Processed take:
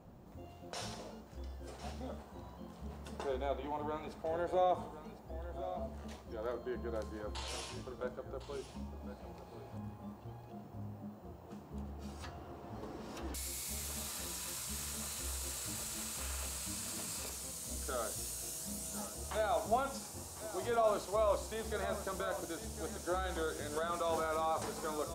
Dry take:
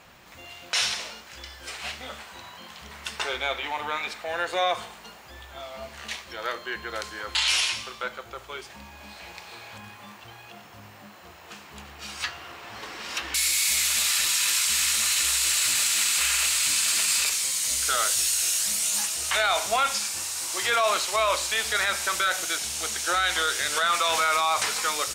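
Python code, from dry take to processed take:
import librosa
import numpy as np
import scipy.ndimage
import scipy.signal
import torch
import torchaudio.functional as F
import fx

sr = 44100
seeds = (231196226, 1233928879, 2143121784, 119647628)

y = fx.curve_eq(x, sr, hz=(240.0, 730.0, 2200.0, 13000.0), db=(0, -9, -29, -19))
y = y + 10.0 ** (-12.5 / 20.0) * np.pad(y, (int(1055 * sr / 1000.0), 0))[:len(y)]
y = F.gain(torch.from_numpy(y), 3.0).numpy()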